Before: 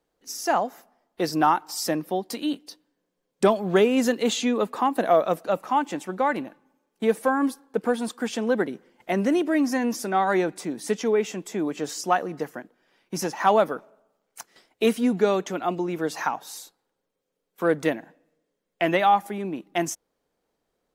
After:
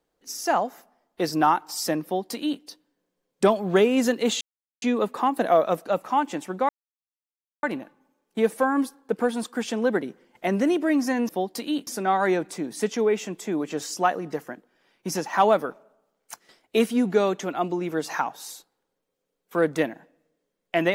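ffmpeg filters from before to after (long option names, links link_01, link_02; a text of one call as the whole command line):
ffmpeg -i in.wav -filter_complex "[0:a]asplit=5[link_01][link_02][link_03][link_04][link_05];[link_01]atrim=end=4.41,asetpts=PTS-STARTPTS,afade=type=out:start_time=4.406:duration=0.004:curve=hsin,apad=pad_dur=0.41[link_06];[link_02]atrim=start=4.41:end=6.28,asetpts=PTS-STARTPTS,afade=type=in:duration=0.004:curve=hsin,afade=type=out:start_time=1.866:duration=0.004:curve=hsin,apad=pad_dur=0.94[link_07];[link_03]atrim=start=6.28:end=9.942,asetpts=PTS-STARTPTS,afade=type=in:duration=0.004:curve=hsin[link_08];[link_04]atrim=start=2.038:end=2.622[link_09];[link_05]atrim=start=9.938[link_10];[link_06][link_07][link_08]concat=n=3:v=0:a=1[link_11];[link_11][link_09]acrossfade=duration=0.004:curve1=hsin:curve2=hsin[link_12];[link_12][link_10]acrossfade=duration=0.004:curve1=hsin:curve2=hsin" out.wav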